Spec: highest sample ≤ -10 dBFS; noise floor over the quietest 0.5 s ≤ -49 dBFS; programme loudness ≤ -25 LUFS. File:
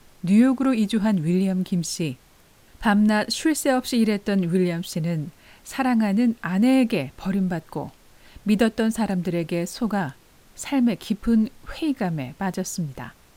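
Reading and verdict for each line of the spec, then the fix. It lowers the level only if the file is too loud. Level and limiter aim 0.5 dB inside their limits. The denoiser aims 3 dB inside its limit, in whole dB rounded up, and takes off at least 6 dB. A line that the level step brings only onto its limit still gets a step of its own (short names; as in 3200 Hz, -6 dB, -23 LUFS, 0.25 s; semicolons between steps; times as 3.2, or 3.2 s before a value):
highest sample -6.5 dBFS: fail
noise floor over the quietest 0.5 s -54 dBFS: OK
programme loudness -23.0 LUFS: fail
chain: gain -2.5 dB; limiter -10.5 dBFS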